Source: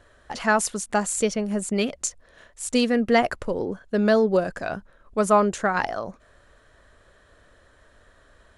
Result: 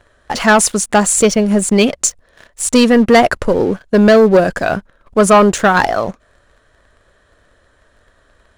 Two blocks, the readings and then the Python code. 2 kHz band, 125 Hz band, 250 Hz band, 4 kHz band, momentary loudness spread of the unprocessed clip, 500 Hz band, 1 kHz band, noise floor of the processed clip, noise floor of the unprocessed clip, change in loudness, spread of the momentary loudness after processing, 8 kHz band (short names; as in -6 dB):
+11.0 dB, +12.5 dB, +12.0 dB, +11.5 dB, 13 LU, +11.0 dB, +10.5 dB, -55 dBFS, -57 dBFS, +11.5 dB, 11 LU, +13.0 dB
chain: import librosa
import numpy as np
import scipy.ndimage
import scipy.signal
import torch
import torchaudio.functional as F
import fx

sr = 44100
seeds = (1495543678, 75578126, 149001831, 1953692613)

y = fx.leveller(x, sr, passes=2)
y = y * 10.0 ** (6.0 / 20.0)